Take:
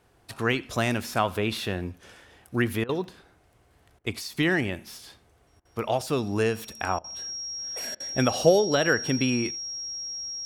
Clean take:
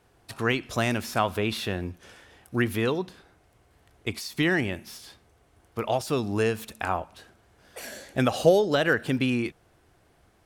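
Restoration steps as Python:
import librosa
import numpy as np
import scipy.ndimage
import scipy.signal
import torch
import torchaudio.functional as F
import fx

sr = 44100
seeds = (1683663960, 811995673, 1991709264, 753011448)

y = fx.notch(x, sr, hz=5600.0, q=30.0)
y = fx.fix_interpolate(y, sr, at_s=(3.04,), length_ms=1.1)
y = fx.fix_interpolate(y, sr, at_s=(2.84, 3.99, 5.6, 6.99, 7.95), length_ms=50.0)
y = fx.fix_echo_inverse(y, sr, delay_ms=84, level_db=-24.0)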